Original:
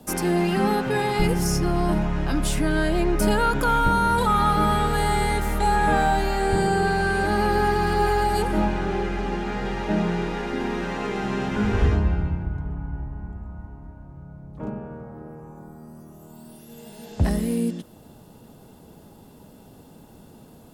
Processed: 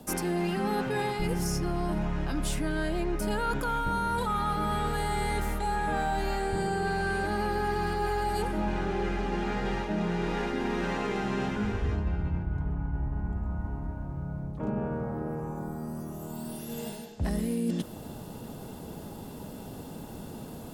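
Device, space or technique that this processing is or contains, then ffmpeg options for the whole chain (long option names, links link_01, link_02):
compression on the reversed sound: -af "areverse,acompressor=threshold=-34dB:ratio=6,areverse,volume=6.5dB"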